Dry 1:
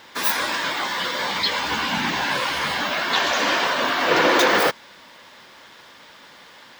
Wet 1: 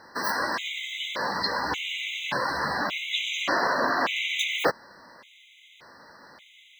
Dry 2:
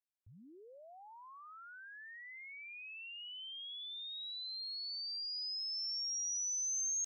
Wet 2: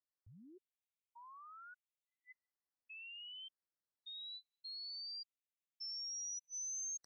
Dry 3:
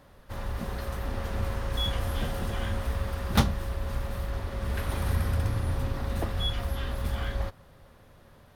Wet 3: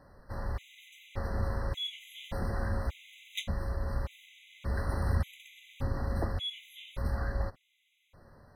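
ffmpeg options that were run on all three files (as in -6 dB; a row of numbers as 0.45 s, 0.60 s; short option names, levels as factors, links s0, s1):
-af "highshelf=f=6200:g=-9,afftfilt=real='re*gt(sin(2*PI*0.86*pts/sr)*(1-2*mod(floor(b*sr/1024/2000),2)),0)':imag='im*gt(sin(2*PI*0.86*pts/sr)*(1-2*mod(floor(b*sr/1024/2000),2)),0)':win_size=1024:overlap=0.75,volume=0.841"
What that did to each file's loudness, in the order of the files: -6.5 LU, -6.5 LU, -4.5 LU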